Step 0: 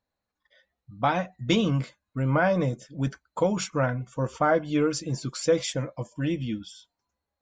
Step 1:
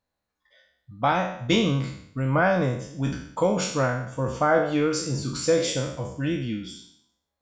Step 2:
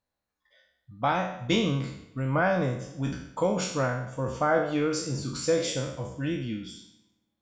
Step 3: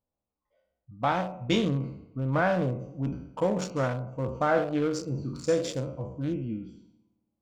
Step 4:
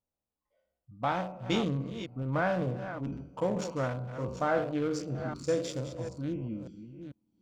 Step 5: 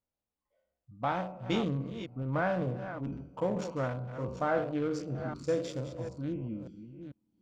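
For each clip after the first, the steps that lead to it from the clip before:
peak hold with a decay on every bin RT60 0.67 s
convolution reverb RT60 1.3 s, pre-delay 55 ms, DRR 19 dB; level −3.5 dB
adaptive Wiener filter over 25 samples
delay that plays each chunk backwards 445 ms, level −10.5 dB; level −4 dB
high-shelf EQ 4,800 Hz −8 dB; level −1 dB

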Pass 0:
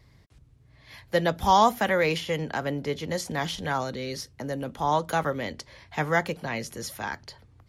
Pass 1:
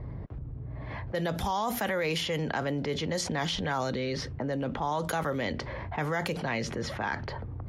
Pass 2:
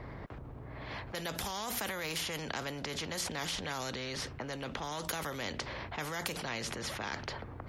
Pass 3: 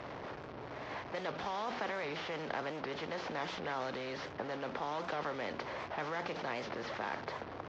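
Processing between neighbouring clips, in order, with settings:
low-pass that shuts in the quiet parts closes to 780 Hz, open at −23 dBFS; brickwall limiter −17 dBFS, peak gain reduction 10 dB; envelope flattener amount 70%; level −4.5 dB
every bin compressed towards the loudest bin 2 to 1
linear delta modulator 32 kbit/s, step −37.5 dBFS; resonant band-pass 680 Hz, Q 0.58; wow of a warped record 78 rpm, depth 160 cents; level +2.5 dB

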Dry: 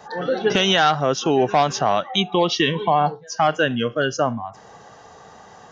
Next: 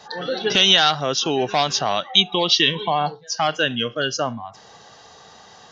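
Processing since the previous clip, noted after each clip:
parametric band 4,100 Hz +13.5 dB 1.4 octaves
level −4 dB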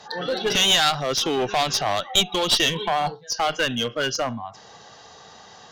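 asymmetric clip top −20 dBFS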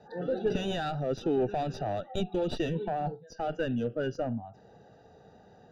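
moving average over 41 samples
level −1 dB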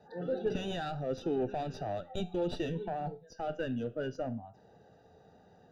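tuned comb filter 87 Hz, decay 0.38 s, harmonics all, mix 50%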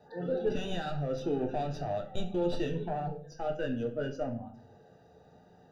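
convolution reverb RT60 0.50 s, pre-delay 7 ms, DRR 4 dB

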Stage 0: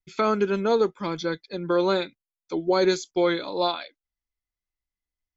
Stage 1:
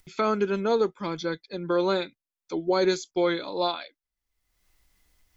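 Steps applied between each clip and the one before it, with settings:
upward compression, threshold −41 dBFS
level −2 dB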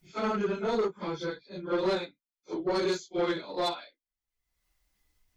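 random phases in long frames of 100 ms
soft clipping −21.5 dBFS, distortion −12 dB
expander for the loud parts 1.5 to 1, over −39 dBFS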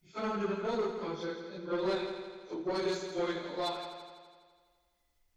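echo machine with several playback heads 83 ms, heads first and second, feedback 60%, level −11.5 dB
level −5 dB

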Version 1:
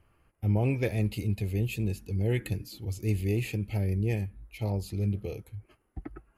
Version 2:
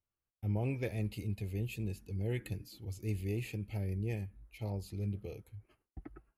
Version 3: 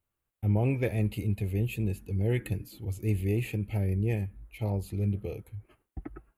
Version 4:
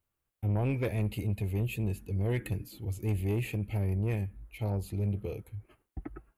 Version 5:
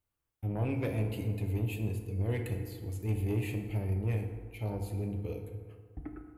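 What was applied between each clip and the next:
noise gate with hold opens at −50 dBFS; level −8 dB
parametric band 5,200 Hz −10.5 dB 0.84 octaves; level +8 dB
soft clipping −23.5 dBFS, distortion −16 dB
feedback delay network reverb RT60 1.7 s, low-frequency decay 0.9×, high-frequency decay 0.5×, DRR 3.5 dB; level −3.5 dB

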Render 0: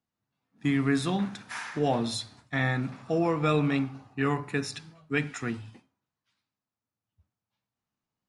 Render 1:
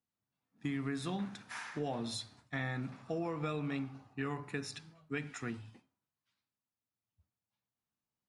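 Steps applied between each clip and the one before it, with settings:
downward compressor, threshold −26 dBFS, peak gain reduction 6.5 dB
level −7 dB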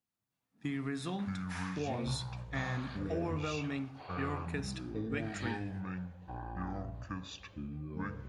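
delay with pitch and tempo change per echo 303 ms, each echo −7 semitones, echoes 2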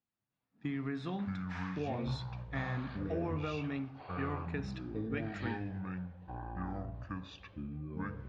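high-frequency loss of the air 200 metres

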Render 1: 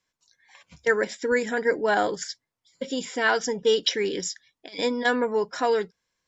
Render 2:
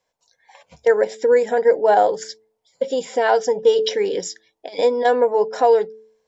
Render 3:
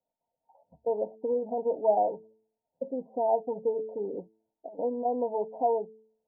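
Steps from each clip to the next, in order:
flat-topped bell 630 Hz +13 dB 1.3 octaves; hum removal 109.7 Hz, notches 4; in parallel at 0 dB: downward compressor, threshold −21 dBFS, peak gain reduction 14 dB; on the sum: level −5 dB
Chebyshev low-pass with heavy ripple 940 Hz, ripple 9 dB; level −5 dB

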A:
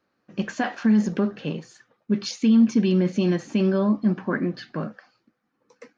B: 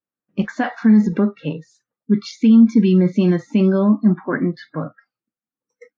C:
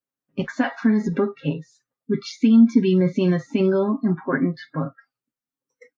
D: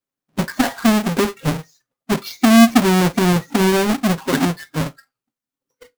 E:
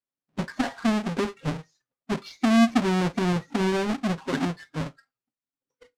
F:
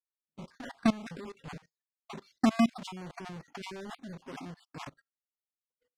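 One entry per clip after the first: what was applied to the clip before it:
noise reduction from a noise print of the clip's start 27 dB; bass and treble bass +4 dB, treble −10 dB; level +4 dB
comb filter 7.4 ms, depth 67%; level −2.5 dB
each half-wave held at its own peak; convolution reverb RT60 0.20 s, pre-delay 22 ms, DRR 20 dB
high-frequency loss of the air 69 metres; level −8.5 dB
time-frequency cells dropped at random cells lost 26%; output level in coarse steps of 21 dB; noise gate −56 dBFS, range −16 dB

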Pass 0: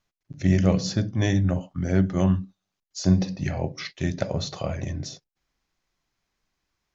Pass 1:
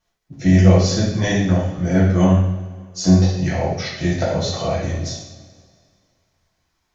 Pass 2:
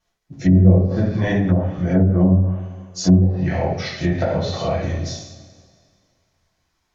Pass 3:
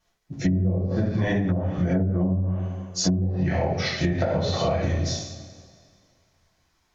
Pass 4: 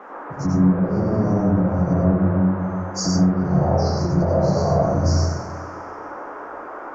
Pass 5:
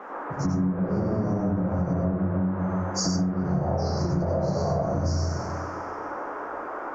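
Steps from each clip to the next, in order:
parametric band 670 Hz +3.5 dB 0.59 octaves; coupled-rooms reverb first 0.67 s, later 2.2 s, from −17 dB, DRR −8 dB; level −1 dB
treble cut that deepens with the level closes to 450 Hz, closed at −10 dBFS
downward compressor 16 to 1, threshold −21 dBFS, peak gain reduction 15.5 dB; level +2 dB
Chebyshev band-stop filter 1,100–4,600 Hz, order 5; noise in a band 270–1,400 Hz −40 dBFS; dense smooth reverb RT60 0.87 s, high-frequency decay 0.25×, pre-delay 80 ms, DRR −3 dB
downward compressor, threshold −22 dBFS, peak gain reduction 10.5 dB

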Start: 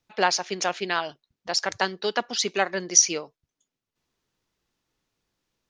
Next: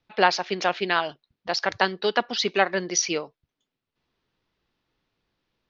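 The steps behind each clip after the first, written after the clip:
low-pass filter 4,500 Hz 24 dB per octave
level +3 dB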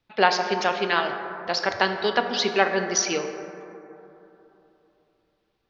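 dense smooth reverb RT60 3.2 s, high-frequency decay 0.3×, DRR 5.5 dB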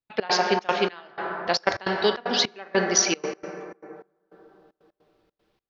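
gate pattern ".x.xxx.xx...xxxx" 153 BPM −24 dB
level +3 dB

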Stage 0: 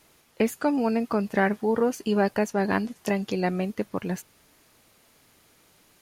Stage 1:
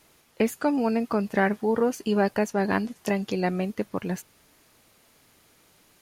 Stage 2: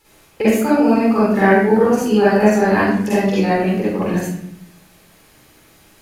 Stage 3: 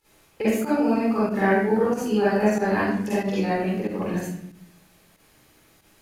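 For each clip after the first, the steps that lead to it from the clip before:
no processing that can be heard
convolution reverb RT60 0.70 s, pre-delay 42 ms, DRR −10 dB; level −2 dB
fake sidechain pumping 93 BPM, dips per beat 1, −11 dB, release 80 ms; level −7.5 dB

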